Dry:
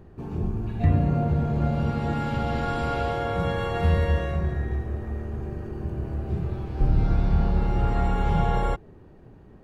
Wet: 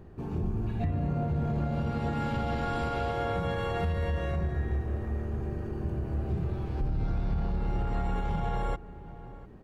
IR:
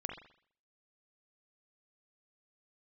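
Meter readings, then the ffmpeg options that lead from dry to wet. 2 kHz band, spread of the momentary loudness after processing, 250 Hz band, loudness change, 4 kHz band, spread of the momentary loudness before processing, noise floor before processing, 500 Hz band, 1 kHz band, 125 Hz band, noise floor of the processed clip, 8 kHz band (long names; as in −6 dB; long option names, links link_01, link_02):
−5.0 dB, 5 LU, −5.5 dB, −5.5 dB, −5.0 dB, 9 LU, −49 dBFS, −4.5 dB, −5.0 dB, −6.0 dB, −45 dBFS, can't be measured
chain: -filter_complex "[0:a]asplit=2[link_01][link_02];[link_02]asoftclip=type=tanh:threshold=-24dB,volume=-6dB[link_03];[link_01][link_03]amix=inputs=2:normalize=0,asplit=2[link_04][link_05];[link_05]adelay=699.7,volume=-21dB,highshelf=frequency=4000:gain=-15.7[link_06];[link_04][link_06]amix=inputs=2:normalize=0,alimiter=limit=-17.5dB:level=0:latency=1:release=137,volume=-4.5dB"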